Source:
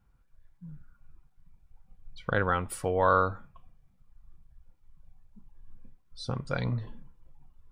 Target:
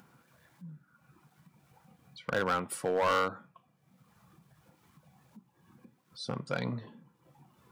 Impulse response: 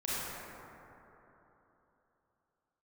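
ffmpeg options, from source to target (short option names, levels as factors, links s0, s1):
-af "highpass=f=150:w=0.5412,highpass=f=150:w=1.3066,acompressor=mode=upward:threshold=0.00398:ratio=2.5,asoftclip=type=hard:threshold=0.0708"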